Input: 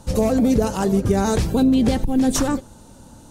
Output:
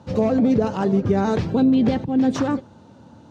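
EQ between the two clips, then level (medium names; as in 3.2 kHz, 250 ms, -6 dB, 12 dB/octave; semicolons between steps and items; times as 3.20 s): high-pass 93 Hz 24 dB/octave; distance through air 210 m; 0.0 dB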